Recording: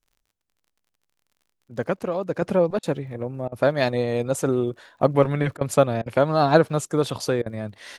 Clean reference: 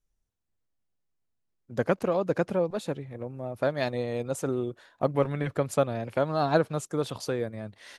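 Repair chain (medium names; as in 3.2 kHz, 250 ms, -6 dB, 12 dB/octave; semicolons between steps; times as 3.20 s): de-click; interpolate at 2.79/3.48/5.57/6.02/7.42 s, 40 ms; trim 0 dB, from 2.42 s -7 dB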